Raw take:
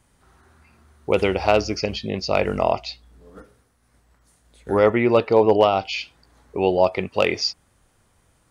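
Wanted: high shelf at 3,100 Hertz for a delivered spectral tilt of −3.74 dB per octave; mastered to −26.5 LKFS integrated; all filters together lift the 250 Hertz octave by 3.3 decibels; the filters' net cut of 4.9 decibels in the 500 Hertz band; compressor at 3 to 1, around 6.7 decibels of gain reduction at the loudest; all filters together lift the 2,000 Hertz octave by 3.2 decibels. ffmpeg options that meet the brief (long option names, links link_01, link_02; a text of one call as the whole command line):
ffmpeg -i in.wav -af "equalizer=frequency=250:width_type=o:gain=7.5,equalizer=frequency=500:width_type=o:gain=-8.5,equalizer=frequency=2000:width_type=o:gain=6,highshelf=frequency=3100:gain=-4,acompressor=threshold=-22dB:ratio=3,volume=0.5dB" out.wav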